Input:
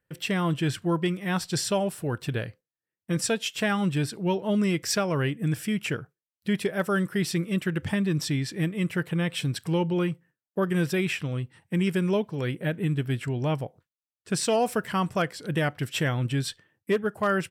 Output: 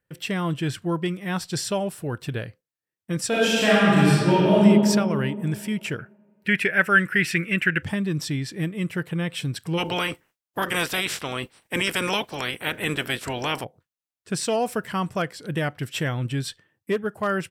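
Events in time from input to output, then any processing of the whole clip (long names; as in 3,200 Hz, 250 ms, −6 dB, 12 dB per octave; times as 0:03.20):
0:03.28–0:04.60: thrown reverb, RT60 2.2 s, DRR −9 dB
0:05.99–0:07.83: flat-topped bell 2,000 Hz +15 dB 1.2 octaves
0:09.77–0:13.63: ceiling on every frequency bin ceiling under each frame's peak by 27 dB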